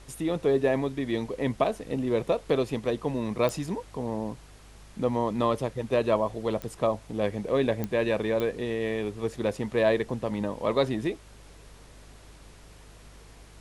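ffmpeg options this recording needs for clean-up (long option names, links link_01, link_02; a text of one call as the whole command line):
ffmpeg -i in.wav -af "adeclick=threshold=4,bandreject=frequency=51.1:width_type=h:width=4,bandreject=frequency=102.2:width_type=h:width=4,bandreject=frequency=153.3:width_type=h:width=4,afftdn=noise_reduction=22:noise_floor=-50" out.wav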